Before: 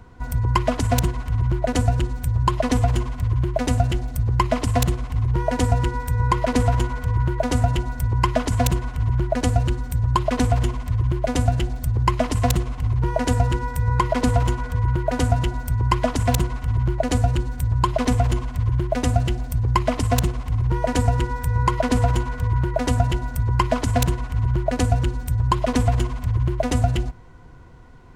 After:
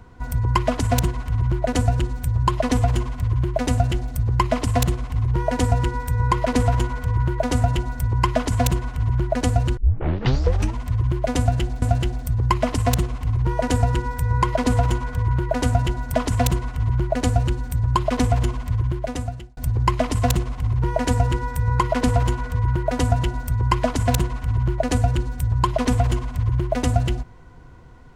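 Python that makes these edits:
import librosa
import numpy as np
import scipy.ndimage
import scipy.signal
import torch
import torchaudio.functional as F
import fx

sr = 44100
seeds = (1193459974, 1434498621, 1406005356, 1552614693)

y = fx.edit(x, sr, fx.tape_start(start_s=9.77, length_s=1.02),
    fx.repeat(start_s=11.39, length_s=0.43, count=2),
    fx.cut(start_s=15.71, length_s=0.31),
    fx.fade_out_span(start_s=18.62, length_s=0.83), tone=tone)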